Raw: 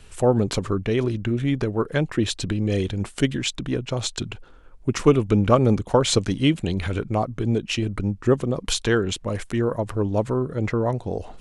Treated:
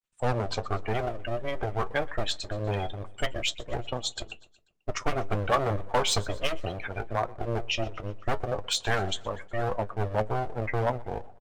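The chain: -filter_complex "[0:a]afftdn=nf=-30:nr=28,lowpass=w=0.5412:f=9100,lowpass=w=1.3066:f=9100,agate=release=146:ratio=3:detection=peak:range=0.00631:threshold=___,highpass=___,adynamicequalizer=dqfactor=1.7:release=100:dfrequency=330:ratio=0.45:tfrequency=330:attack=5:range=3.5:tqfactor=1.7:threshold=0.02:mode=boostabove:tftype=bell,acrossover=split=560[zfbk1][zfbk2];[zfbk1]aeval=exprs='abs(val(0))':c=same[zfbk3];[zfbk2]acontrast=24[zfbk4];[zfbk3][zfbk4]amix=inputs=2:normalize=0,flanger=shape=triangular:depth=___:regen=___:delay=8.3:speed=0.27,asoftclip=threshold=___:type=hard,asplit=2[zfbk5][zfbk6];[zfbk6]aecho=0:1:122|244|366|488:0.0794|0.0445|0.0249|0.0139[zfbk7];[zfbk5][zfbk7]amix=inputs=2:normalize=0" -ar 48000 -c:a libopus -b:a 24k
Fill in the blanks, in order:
0.00891, 240, 2.3, 57, 0.15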